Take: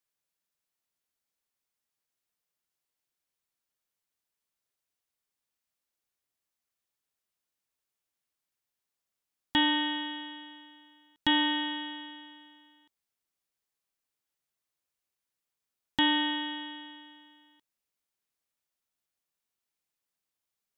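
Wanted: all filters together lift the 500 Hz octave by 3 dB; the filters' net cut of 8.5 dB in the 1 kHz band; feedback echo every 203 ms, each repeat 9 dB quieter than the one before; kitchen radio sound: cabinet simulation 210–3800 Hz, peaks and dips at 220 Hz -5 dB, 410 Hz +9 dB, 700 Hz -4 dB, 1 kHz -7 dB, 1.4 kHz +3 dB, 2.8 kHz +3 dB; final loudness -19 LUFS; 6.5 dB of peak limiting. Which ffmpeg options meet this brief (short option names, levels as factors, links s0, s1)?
-af "equalizer=f=500:t=o:g=8,equalizer=f=1000:t=o:g=-7,alimiter=limit=0.0891:level=0:latency=1,highpass=210,equalizer=f=220:t=q:w=4:g=-5,equalizer=f=410:t=q:w=4:g=9,equalizer=f=700:t=q:w=4:g=-4,equalizer=f=1000:t=q:w=4:g=-7,equalizer=f=1400:t=q:w=4:g=3,equalizer=f=2800:t=q:w=4:g=3,lowpass=f=3800:w=0.5412,lowpass=f=3800:w=1.3066,aecho=1:1:203|406|609|812:0.355|0.124|0.0435|0.0152,volume=4.22"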